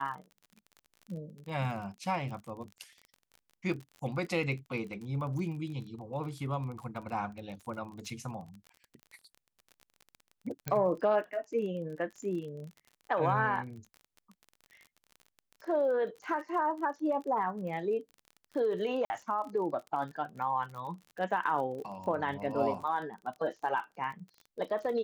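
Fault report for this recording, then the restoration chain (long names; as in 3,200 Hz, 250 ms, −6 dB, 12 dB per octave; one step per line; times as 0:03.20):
surface crackle 32 per second −41 dBFS
0:10.68: click −17 dBFS
0:19.05–0:19.10: drop-out 50 ms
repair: click removal
repair the gap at 0:19.05, 50 ms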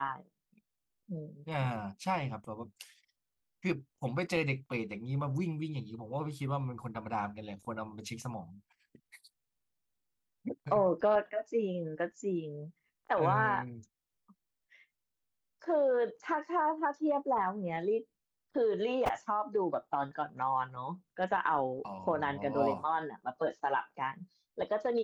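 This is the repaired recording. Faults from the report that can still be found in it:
none of them is left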